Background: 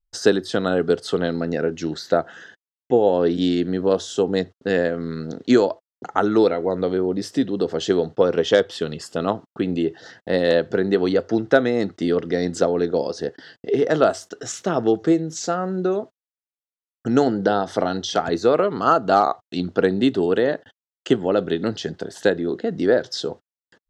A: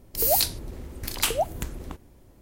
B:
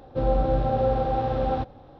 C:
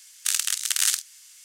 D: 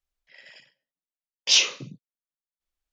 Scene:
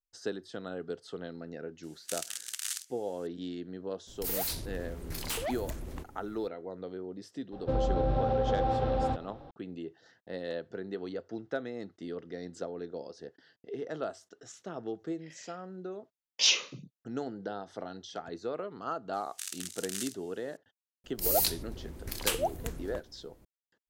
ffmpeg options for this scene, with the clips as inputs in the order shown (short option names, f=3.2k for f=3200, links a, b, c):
-filter_complex "[3:a]asplit=2[a][b];[1:a]asplit=2[c][d];[0:a]volume=-19dB[e];[c]asoftclip=type=tanh:threshold=-29dB[f];[2:a]alimiter=limit=-19.5dB:level=0:latency=1:release=71[g];[a]atrim=end=1.44,asetpts=PTS-STARTPTS,volume=-14dB,afade=t=in:d=0.004:c=hsin,afade=t=out:st=1.436:d=0.004:c=hsin,adelay=1830[h];[f]atrim=end=2.41,asetpts=PTS-STARTPTS,volume=-2dB,afade=t=in:d=0.004:c=hsin,afade=t=out:st=2.406:d=0.004:c=hsin,adelay=4070[i];[g]atrim=end=1.99,asetpts=PTS-STARTPTS,volume=-1dB,afade=t=in:d=0.004:c=hsin,afade=t=out:st=1.986:d=0.004:c=hsin,adelay=7520[j];[4:a]atrim=end=2.92,asetpts=PTS-STARTPTS,volume=-6dB,afade=t=in:d=0.004:c=hsin,afade=t=out:st=2.916:d=0.004:c=hsin,adelay=657972S[k];[b]atrim=end=1.44,asetpts=PTS-STARTPTS,volume=-16dB,afade=t=in:d=0.004:c=hsin,afade=t=out:st=1.436:d=0.004:c=hsin,adelay=19130[l];[d]atrim=end=2.41,asetpts=PTS-STARTPTS,volume=-5.5dB,afade=t=in:d=0.004:c=hsin,afade=t=out:st=2.406:d=0.004:c=hsin,adelay=21040[m];[e][h][i][j][k][l][m]amix=inputs=7:normalize=0"